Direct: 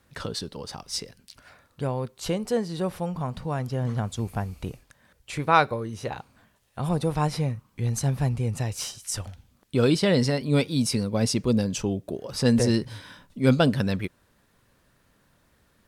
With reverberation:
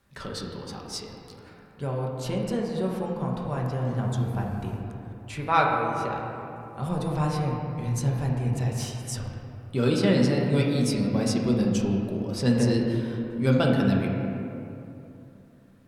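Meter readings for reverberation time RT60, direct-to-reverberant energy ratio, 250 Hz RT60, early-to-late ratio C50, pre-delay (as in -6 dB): 2.9 s, -2.0 dB, 3.3 s, 1.0 dB, 5 ms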